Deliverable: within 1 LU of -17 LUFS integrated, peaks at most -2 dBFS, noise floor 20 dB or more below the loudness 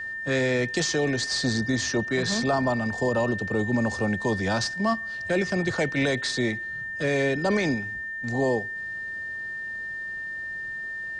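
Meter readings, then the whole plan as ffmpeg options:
steady tone 1800 Hz; tone level -31 dBFS; loudness -26.5 LUFS; peak -14.0 dBFS; loudness target -17.0 LUFS
-> -af "bandreject=f=1.8k:w=30"
-af "volume=9.5dB"

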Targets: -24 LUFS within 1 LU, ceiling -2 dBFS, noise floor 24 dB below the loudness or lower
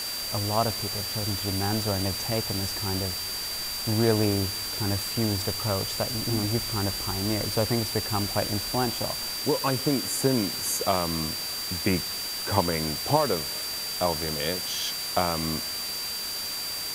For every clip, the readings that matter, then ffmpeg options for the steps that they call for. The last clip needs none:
steady tone 4700 Hz; tone level -32 dBFS; noise floor -33 dBFS; noise floor target -51 dBFS; loudness -26.5 LUFS; peak -6.5 dBFS; loudness target -24.0 LUFS
-> -af "bandreject=f=4.7k:w=30"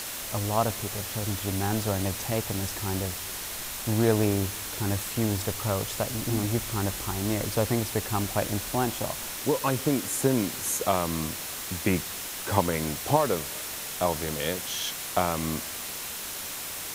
steady tone none; noise floor -36 dBFS; noise floor target -53 dBFS
-> -af "afftdn=nr=17:nf=-36"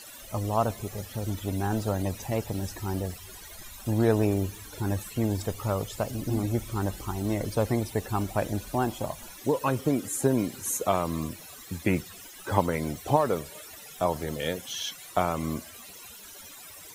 noise floor -46 dBFS; noise floor target -54 dBFS
-> -af "afftdn=nr=8:nf=-46"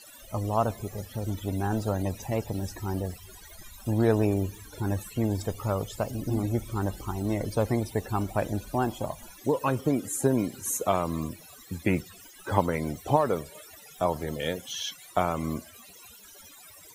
noise floor -50 dBFS; noise floor target -54 dBFS
-> -af "afftdn=nr=6:nf=-50"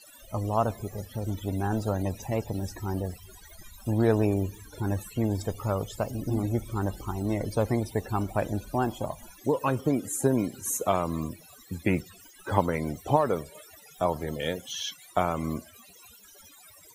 noise floor -53 dBFS; noise floor target -54 dBFS; loudness -29.5 LUFS; peak -6.5 dBFS; loudness target -24.0 LUFS
-> -af "volume=5.5dB,alimiter=limit=-2dB:level=0:latency=1"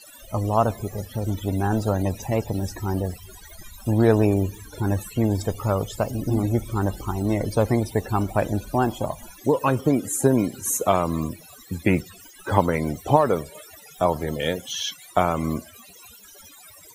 loudness -24.0 LUFS; peak -2.0 dBFS; noise floor -48 dBFS

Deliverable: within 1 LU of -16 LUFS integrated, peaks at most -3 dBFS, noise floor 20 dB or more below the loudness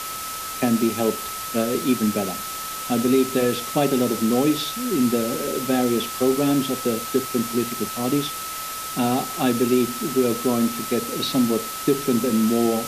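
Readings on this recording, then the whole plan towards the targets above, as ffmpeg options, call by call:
steady tone 1300 Hz; tone level -32 dBFS; noise floor -31 dBFS; noise floor target -43 dBFS; loudness -22.5 LUFS; peak -7.5 dBFS; loudness target -16.0 LUFS
-> -af "bandreject=f=1.3k:w=30"
-af "afftdn=nr=12:nf=-31"
-af "volume=6.5dB,alimiter=limit=-3dB:level=0:latency=1"

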